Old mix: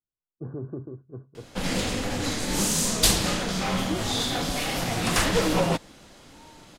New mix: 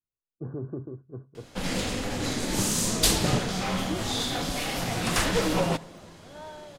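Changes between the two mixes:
first sound -3.0 dB; second sound: remove vowel filter u; reverb: on, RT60 1.2 s

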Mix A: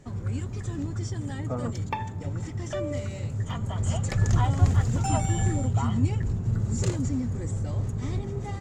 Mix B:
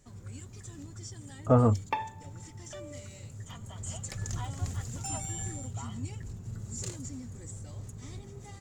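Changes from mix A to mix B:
speech +10.0 dB; first sound: add pre-emphasis filter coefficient 0.8

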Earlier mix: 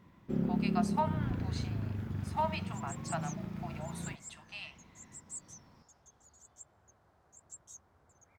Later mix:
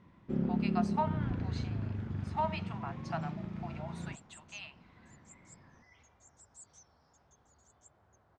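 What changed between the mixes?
second sound: entry +1.25 s; master: add distance through air 100 m

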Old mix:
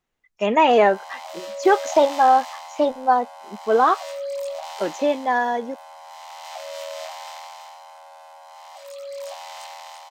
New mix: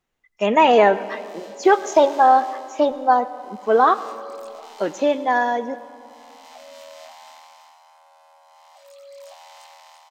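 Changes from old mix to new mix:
background -10.0 dB; reverb: on, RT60 2.3 s

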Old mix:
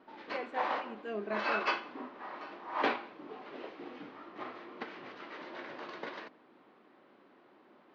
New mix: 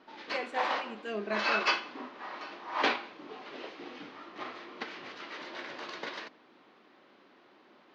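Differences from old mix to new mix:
speech: send +6.0 dB; master: remove low-pass 1.4 kHz 6 dB/octave

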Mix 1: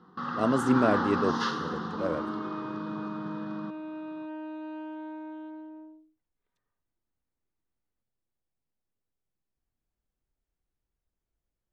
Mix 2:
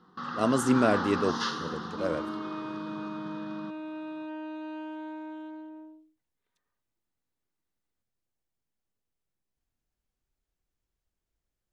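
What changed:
first sound -4.0 dB; second sound: add brick-wall FIR high-pass 160 Hz; master: add treble shelf 2.5 kHz +9 dB

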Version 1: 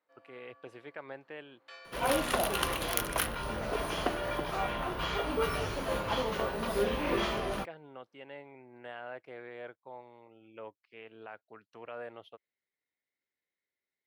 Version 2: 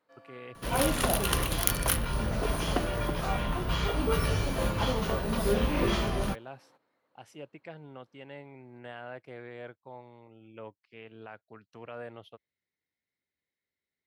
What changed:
first sound +6.5 dB; second sound: entry -1.30 s; master: add tone controls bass +11 dB, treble +6 dB

